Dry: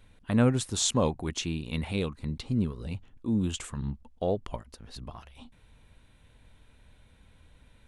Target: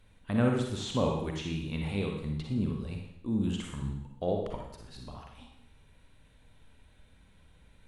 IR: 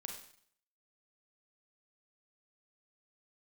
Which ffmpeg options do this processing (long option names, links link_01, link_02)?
-filter_complex "[0:a]acrossover=split=3400[link_01][link_02];[link_02]acompressor=threshold=-46dB:ratio=4:attack=1:release=60[link_03];[link_01][link_03]amix=inputs=2:normalize=0[link_04];[1:a]atrim=start_sample=2205,asetrate=35280,aresample=44100[link_05];[link_04][link_05]afir=irnorm=-1:irlink=0"